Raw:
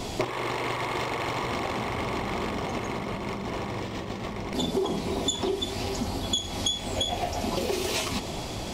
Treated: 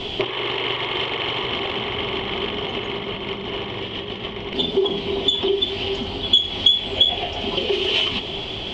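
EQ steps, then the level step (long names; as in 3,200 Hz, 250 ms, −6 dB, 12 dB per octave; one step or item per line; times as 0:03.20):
low-pass with resonance 3,100 Hz, resonance Q 9.1
parametric band 400 Hz +10 dB 0.24 octaves
0.0 dB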